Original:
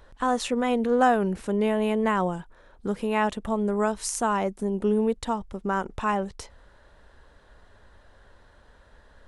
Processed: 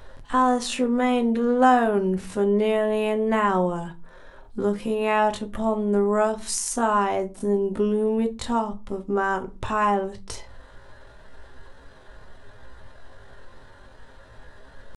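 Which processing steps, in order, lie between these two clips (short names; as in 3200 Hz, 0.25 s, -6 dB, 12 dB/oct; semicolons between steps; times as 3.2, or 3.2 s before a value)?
in parallel at +1 dB: compressor, threshold -38 dBFS, peak gain reduction 21 dB; on the sum: tempo 0.62×; reverb, pre-delay 5 ms, DRR 6.5 dB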